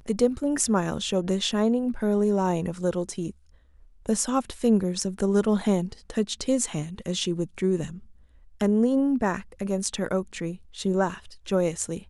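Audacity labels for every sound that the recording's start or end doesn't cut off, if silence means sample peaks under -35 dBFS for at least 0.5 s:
4.060000	7.980000	sound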